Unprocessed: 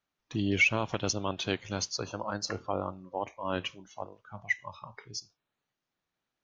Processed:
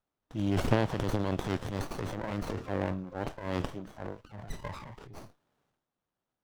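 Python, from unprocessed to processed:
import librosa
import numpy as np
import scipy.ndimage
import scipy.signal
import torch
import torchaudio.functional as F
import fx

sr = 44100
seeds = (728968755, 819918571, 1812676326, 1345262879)

y = fx.transient(x, sr, attack_db=-6, sustain_db=11)
y = fx.running_max(y, sr, window=17)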